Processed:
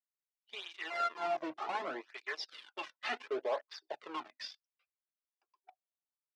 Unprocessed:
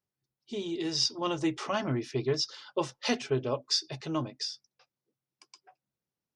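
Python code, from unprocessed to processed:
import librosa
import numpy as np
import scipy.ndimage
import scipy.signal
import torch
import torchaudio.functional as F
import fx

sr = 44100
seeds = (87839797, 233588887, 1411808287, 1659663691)

p1 = fx.sample_sort(x, sr, block=64, at=(0.9, 1.37))
p2 = fx.wah_lfo(p1, sr, hz=0.48, low_hz=710.0, high_hz=2500.0, q=2.0)
p3 = fx.fuzz(p2, sr, gain_db=42.0, gate_db=-52.0)
p4 = p2 + (p3 * librosa.db_to_amplitude(-11.5))
p5 = fx.bandpass_edges(p4, sr, low_hz=360.0, high_hz=4100.0)
p6 = fx.flanger_cancel(p5, sr, hz=0.68, depth_ms=2.5)
y = p6 * librosa.db_to_amplitude(-6.0)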